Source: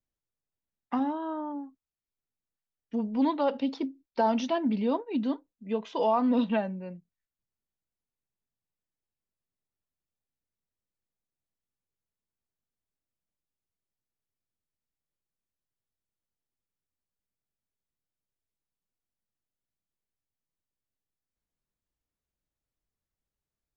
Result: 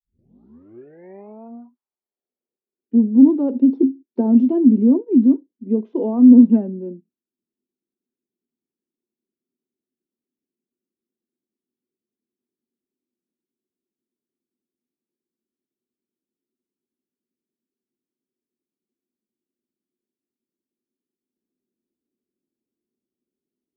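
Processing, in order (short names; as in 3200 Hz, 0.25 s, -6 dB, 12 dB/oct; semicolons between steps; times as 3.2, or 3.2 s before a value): tape start at the beginning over 1.88 s; band-pass sweep 5200 Hz -> 300 Hz, 0.13–2.97; small resonant body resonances 240/360 Hz, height 17 dB, ringing for 45 ms; gain +4 dB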